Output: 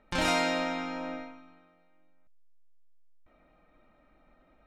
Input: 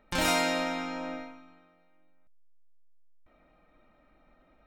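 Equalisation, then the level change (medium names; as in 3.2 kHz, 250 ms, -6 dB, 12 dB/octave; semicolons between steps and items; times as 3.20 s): distance through air 53 m; 0.0 dB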